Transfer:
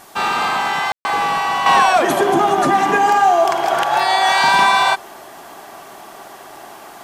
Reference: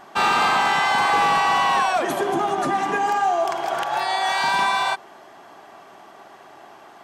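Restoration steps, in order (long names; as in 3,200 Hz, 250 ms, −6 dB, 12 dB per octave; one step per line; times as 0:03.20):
ambience match 0:00.92–0:01.05
downward expander −30 dBFS, range −21 dB
level 0 dB, from 0:01.66 −7.5 dB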